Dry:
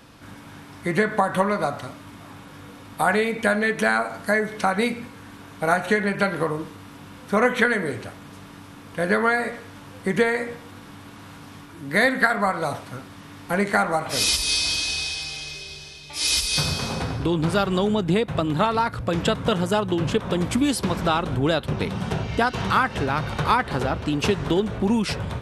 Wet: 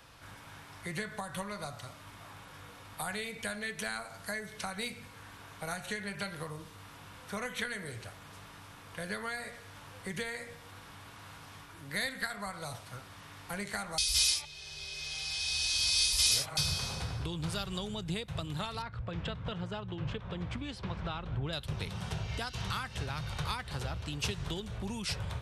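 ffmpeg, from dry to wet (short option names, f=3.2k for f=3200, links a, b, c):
-filter_complex "[0:a]asettb=1/sr,asplit=3[a][b][c];[a]atrim=end=18.824[d];[b]atrim=start=18.82:end=21.53,asetpts=PTS-STARTPTS,afade=t=in:d=0.004:c=qsin,afade=t=out:st=2.706:d=0.004:c=qsin,lowpass=2.4k[e];[c]atrim=start=21.526[f];[d][e]acrossfade=d=0.004:c1=hsin:c2=qsin[g];[g][f]acrossfade=d=0.004:c1=qsin:c2=hsin,asplit=3[h][i][j];[h]atrim=end=13.982[k];[i]atrim=start=13.978:end=16.572,asetpts=PTS-STARTPTS,areverse[l];[j]atrim=start=16.568[m];[k][l]acrossfade=d=0.004:c1=hsin:c2=hsin[n];[n][m]acrossfade=d=0.004:c1=hsin:c2=hsin,acrossover=split=250|3000[o][p][q];[p]acompressor=threshold=-39dB:ratio=2.5[r];[o][r][q]amix=inputs=3:normalize=0,equalizer=f=250:w=1:g=-13,volume=-4.5dB"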